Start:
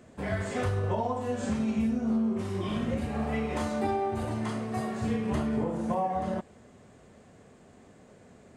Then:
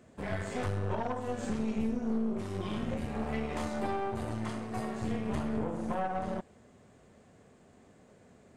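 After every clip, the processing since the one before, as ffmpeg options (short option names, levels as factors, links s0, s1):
-af "aeval=exprs='(tanh(20*val(0)+0.75)-tanh(0.75))/20':c=same"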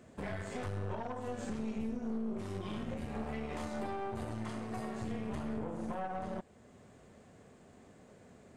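-af "alimiter=level_in=2:limit=0.0631:level=0:latency=1:release=374,volume=0.501,volume=1.12"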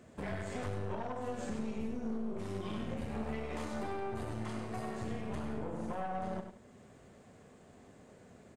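-af "aecho=1:1:97|172:0.398|0.119"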